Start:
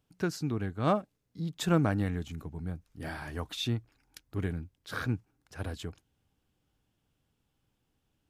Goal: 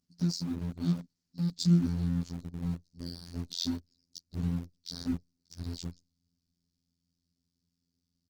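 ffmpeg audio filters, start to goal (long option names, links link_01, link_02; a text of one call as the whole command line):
ffmpeg -i in.wav -filter_complex "[0:a]firequalizer=gain_entry='entry(140,0);entry(210,11);entry(500,-30);entry(1000,-23);entry(2800,-16);entry(4500,14);entry(12000,-15)':delay=0.05:min_phase=1,afftfilt=real='hypot(re,im)*cos(PI*b)':imag='0':win_size=2048:overlap=0.75,asplit=2[link_01][link_02];[link_02]aeval=exprs='val(0)*gte(abs(val(0)),0.0168)':channel_layout=same,volume=-4dB[link_03];[link_01][link_03]amix=inputs=2:normalize=0,volume=-3dB" -ar 48000 -c:a libopus -b:a 16k out.opus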